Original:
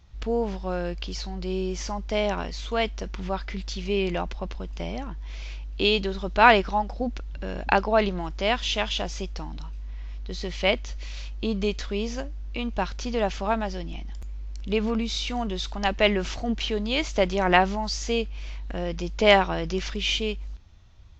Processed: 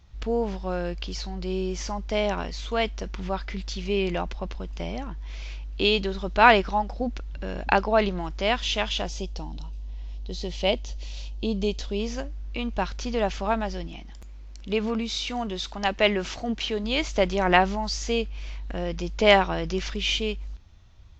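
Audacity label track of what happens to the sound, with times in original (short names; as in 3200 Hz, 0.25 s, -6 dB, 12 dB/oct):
9.090000	12.000000	band shelf 1600 Hz -9 dB 1.3 oct
13.870000	16.840000	low shelf 100 Hz -9 dB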